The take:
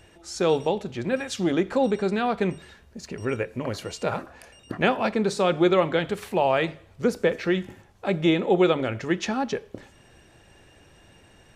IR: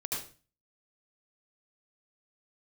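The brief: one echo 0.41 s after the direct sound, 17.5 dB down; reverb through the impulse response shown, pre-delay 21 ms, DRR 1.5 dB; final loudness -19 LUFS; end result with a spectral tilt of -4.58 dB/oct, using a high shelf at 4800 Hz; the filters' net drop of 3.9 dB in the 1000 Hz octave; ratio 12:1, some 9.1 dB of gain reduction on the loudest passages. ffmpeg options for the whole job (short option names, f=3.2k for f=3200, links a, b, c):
-filter_complex "[0:a]equalizer=f=1k:t=o:g=-6,highshelf=f=4.8k:g=8,acompressor=threshold=-25dB:ratio=12,aecho=1:1:410:0.133,asplit=2[a][b];[1:a]atrim=start_sample=2205,adelay=21[c];[b][c]afir=irnorm=-1:irlink=0,volume=-5dB[d];[a][d]amix=inputs=2:normalize=0,volume=10dB"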